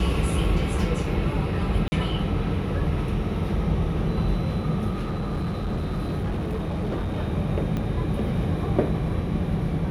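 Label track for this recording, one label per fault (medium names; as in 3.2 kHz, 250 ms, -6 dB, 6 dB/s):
1.880000	1.920000	dropout 40 ms
4.900000	7.190000	clipped -23.5 dBFS
7.770000	7.770000	pop -17 dBFS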